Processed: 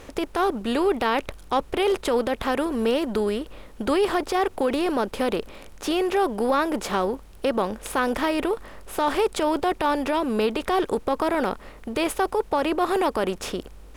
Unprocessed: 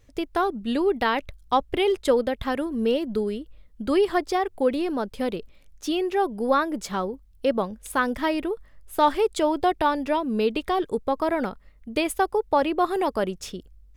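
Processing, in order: per-bin compression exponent 0.6; limiter -11.5 dBFS, peak gain reduction 6.5 dB; gain -1.5 dB

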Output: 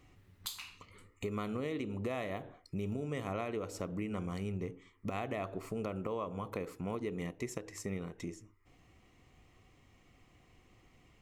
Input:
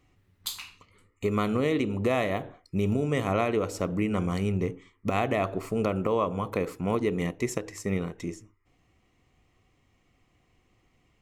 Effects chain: compressor 2:1, threshold -50 dBFS, peak gain reduction 15.5 dB; gain +3 dB

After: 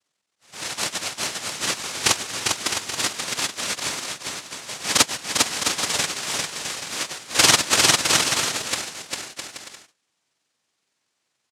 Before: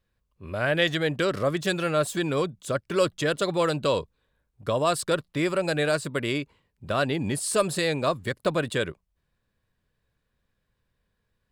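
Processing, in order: spectrum mirrored in octaves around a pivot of 1400 Hz; treble ducked by the level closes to 2000 Hz, closed at -26 dBFS; high shelf 3700 Hz -9.5 dB; comb 4.5 ms, depth 64%; dynamic EQ 210 Hz, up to +3 dB, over -34 dBFS, Q 1.3; noise vocoder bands 1; on a send: bouncing-ball echo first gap 0.4 s, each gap 0.65×, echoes 5; on the sum: maximiser +2 dB; gain -1 dB

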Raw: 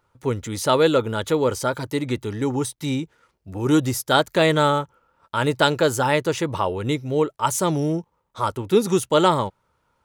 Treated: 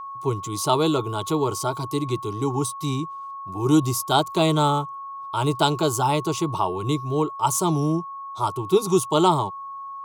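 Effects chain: fixed phaser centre 350 Hz, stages 8; whine 1100 Hz -34 dBFS; gain +1.5 dB

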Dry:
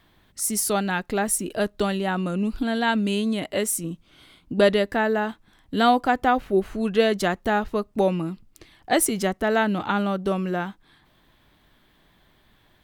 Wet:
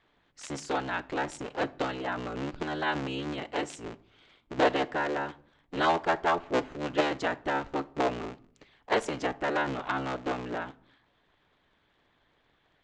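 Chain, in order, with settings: cycle switcher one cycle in 3, inverted; harmonic-percussive split harmonic -5 dB; Chebyshev low-pass 7300 Hz, order 4; tone controls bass -7 dB, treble -9 dB; shoebox room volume 750 m³, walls furnished, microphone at 0.38 m; gain -4 dB

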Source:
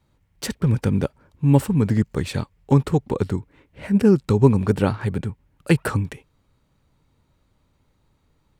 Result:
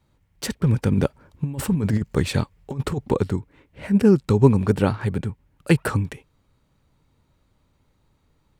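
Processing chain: 0.92–3.19 negative-ratio compressor -20 dBFS, ratio -0.5

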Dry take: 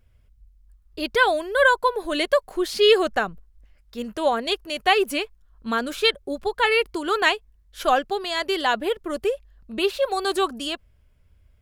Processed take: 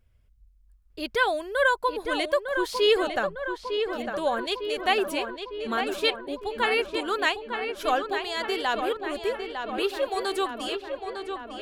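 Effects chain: darkening echo 0.904 s, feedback 66%, low-pass 3500 Hz, level -6.5 dB; gain -5 dB

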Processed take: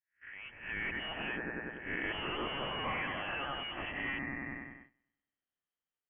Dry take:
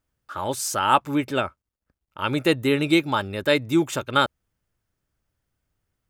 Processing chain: spectral swells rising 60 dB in 0.44 s; Doppler pass-by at 2.49, 25 m/s, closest 11 m; on a send: thin delay 96 ms, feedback 55%, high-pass 1700 Hz, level -5.5 dB; on the sum: soft clip -34 dBFS, distortion -2 dB; compressor 16:1, threshold -50 dBFS, peak gain reduction 15 dB; low shelf 100 Hz -11 dB; AGC gain up to 15 dB; tilt shelf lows -7 dB, about 1200 Hz; inverted band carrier 3200 Hz; gate -55 dBFS, range -16 dB

